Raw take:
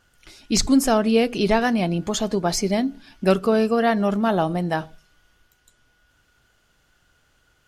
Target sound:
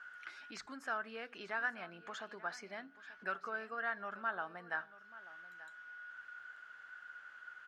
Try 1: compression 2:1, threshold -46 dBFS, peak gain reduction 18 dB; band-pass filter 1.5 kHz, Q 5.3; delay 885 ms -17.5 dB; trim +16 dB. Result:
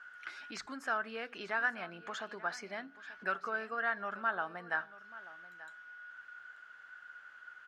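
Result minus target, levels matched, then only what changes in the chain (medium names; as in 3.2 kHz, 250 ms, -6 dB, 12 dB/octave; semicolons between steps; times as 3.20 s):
compression: peak gain reduction -4.5 dB
change: compression 2:1, threshold -55 dBFS, peak gain reduction 22.5 dB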